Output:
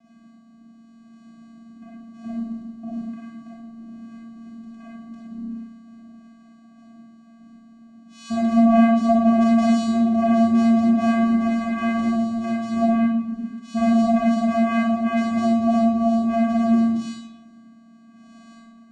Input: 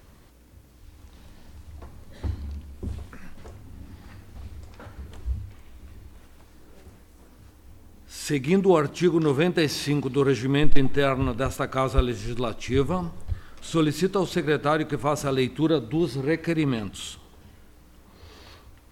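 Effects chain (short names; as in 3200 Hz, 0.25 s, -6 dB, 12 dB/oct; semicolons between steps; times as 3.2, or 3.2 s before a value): vocoder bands 4, square 229 Hz; digital reverb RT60 0.98 s, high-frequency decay 0.7×, pre-delay 5 ms, DRR -6.5 dB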